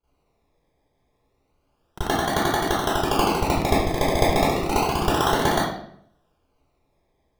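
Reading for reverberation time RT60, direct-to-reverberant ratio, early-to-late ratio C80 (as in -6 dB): 0.70 s, -16.5 dB, 2.5 dB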